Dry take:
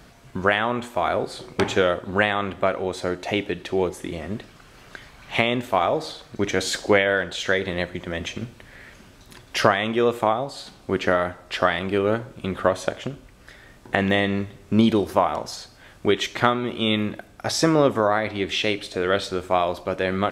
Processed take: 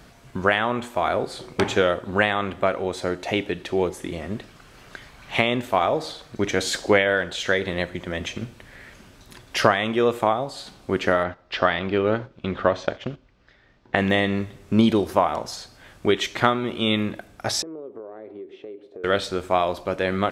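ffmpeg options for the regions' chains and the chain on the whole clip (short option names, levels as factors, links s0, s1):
-filter_complex "[0:a]asettb=1/sr,asplit=3[s0][s1][s2];[s0]atrim=end=11.234[s3];[s1]atrim=start=11.23:end=13.96,asetpts=PTS-STARTPTS,afade=t=in:d=0.004:c=qsin,afade=t=out:st=2.726:d=0.004:c=qsin,lowpass=f=5300:w=0.5412,lowpass=f=5300:w=1.3066,agate=range=0.316:threshold=0.0126:ratio=16:release=100:detection=peak[s4];[s2]atrim=start=13.956[s5];[s3][s4]acrossfade=d=0.004:c1=hsin:c2=qsin[s6];[s6][s5]acrossfade=d=0.004:c1=qsin:c2=hsin,asettb=1/sr,asplit=3[s7][s8][s9];[s7]atrim=end=17.624[s10];[s8]atrim=start=17.62:end=19.04,asetpts=PTS-STARTPTS,afade=t=in:d=0.004:c=qsin,afade=t=out:st=1.416:d=0.004:c=qsin,bandpass=f=400:t=q:w=3.7,acompressor=threshold=0.02:ratio=6:attack=3.2:release=140:knee=1:detection=peak[s11];[s9]atrim=start=19.036[s12];[s10][s11]acrossfade=d=0.004:c1=hsin:c2=qsin[s13];[s13][s12]acrossfade=d=0.004:c1=qsin:c2=hsin"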